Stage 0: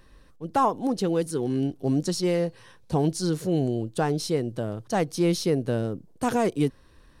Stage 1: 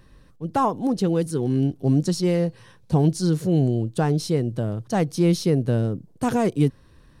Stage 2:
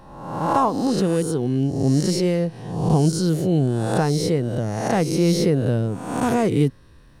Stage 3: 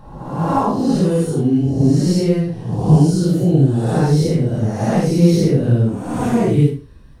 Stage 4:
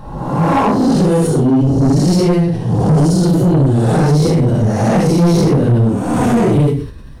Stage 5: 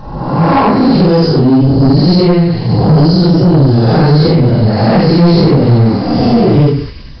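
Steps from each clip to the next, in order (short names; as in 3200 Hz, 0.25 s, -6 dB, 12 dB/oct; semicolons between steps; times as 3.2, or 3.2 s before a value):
bell 130 Hz +8 dB 1.8 oct
spectral swells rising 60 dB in 0.97 s
phase scrambler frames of 0.2 s; low shelf 340 Hz +9 dB; Schroeder reverb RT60 0.38 s, combs from 31 ms, DRR 12.5 dB; gain -1 dB
in parallel at -3 dB: limiter -11 dBFS, peak gain reduction 10 dB; on the sum: soft clip -11.5 dBFS, distortion -11 dB; sustainer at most 100 dB/s; gain +4 dB
nonlinear frequency compression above 4000 Hz 4:1; spectral repair 5.62–6.48, 760–2600 Hz; delay with a stepping band-pass 0.192 s, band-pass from 1700 Hz, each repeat 0.7 oct, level -7 dB; gain +4 dB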